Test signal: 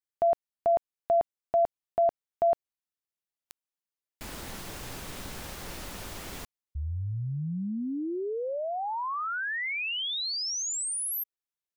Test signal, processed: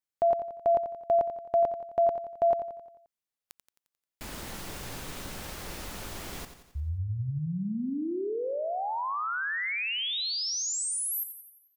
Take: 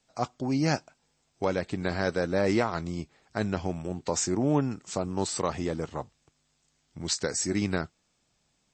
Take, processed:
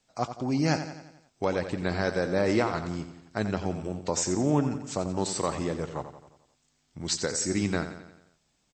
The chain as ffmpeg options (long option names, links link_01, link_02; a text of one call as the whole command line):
ffmpeg -i in.wav -af "aecho=1:1:88|176|264|352|440|528:0.299|0.158|0.0839|0.0444|0.0236|0.0125" out.wav